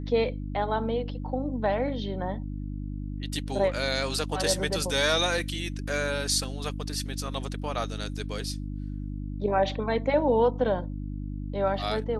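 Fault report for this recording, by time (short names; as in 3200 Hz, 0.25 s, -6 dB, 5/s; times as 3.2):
hum 50 Hz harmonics 6 -34 dBFS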